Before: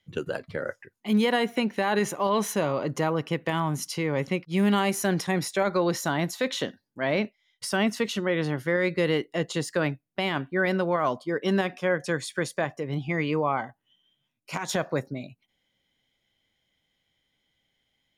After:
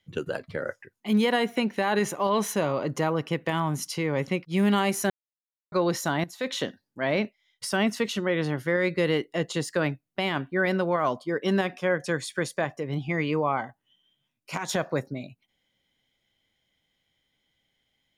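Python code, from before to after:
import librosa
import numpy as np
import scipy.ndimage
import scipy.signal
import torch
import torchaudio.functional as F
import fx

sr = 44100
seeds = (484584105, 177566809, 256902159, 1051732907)

y = fx.edit(x, sr, fx.silence(start_s=5.1, length_s=0.62),
    fx.fade_in_from(start_s=6.24, length_s=0.33, floor_db=-15.0), tone=tone)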